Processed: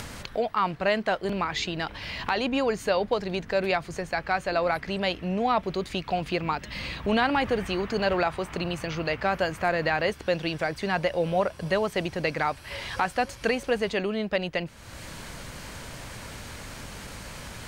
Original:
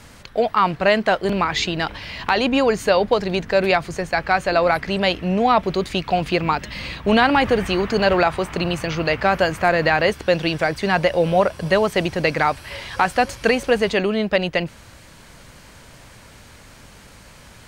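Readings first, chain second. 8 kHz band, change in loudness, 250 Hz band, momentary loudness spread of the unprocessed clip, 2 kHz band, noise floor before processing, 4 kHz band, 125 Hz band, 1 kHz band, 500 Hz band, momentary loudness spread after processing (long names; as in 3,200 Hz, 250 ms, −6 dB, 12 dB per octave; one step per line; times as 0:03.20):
−5.5 dB, −8.0 dB, −8.0 dB, 6 LU, −8.0 dB, −45 dBFS, −7.5 dB, −7.5 dB, −8.0 dB, −8.0 dB, 14 LU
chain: upward compression, threshold −19 dBFS
level −8 dB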